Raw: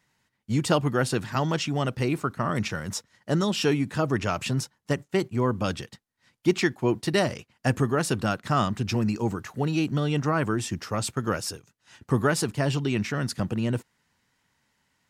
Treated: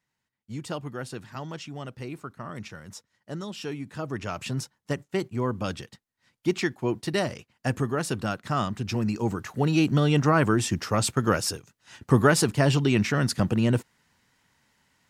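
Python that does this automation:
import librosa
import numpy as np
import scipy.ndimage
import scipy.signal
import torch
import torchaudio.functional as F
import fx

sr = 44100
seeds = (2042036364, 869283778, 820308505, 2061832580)

y = fx.gain(x, sr, db=fx.line((3.68, -11.0), (4.61, -3.0), (8.81, -3.0), (9.87, 4.0)))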